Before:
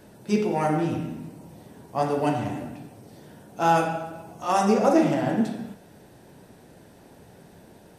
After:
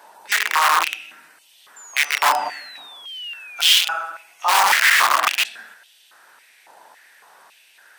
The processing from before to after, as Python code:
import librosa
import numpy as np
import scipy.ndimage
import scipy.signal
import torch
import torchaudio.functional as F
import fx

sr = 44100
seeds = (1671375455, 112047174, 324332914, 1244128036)

y = (np.mod(10.0 ** (18.0 / 20.0) * x + 1.0, 2.0) - 1.0) / 10.0 ** (18.0 / 20.0)
y = fx.spec_paint(y, sr, seeds[0], shape='fall', start_s=1.76, length_s=1.86, low_hz=2300.0, high_hz=7300.0, level_db=-47.0)
y = fx.filter_held_highpass(y, sr, hz=3.6, low_hz=920.0, high_hz=3100.0)
y = y * 10.0 ** (4.5 / 20.0)